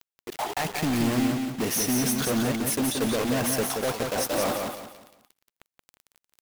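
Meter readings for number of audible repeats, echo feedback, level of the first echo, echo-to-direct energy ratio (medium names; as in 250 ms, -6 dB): 4, 32%, -4.5 dB, -4.0 dB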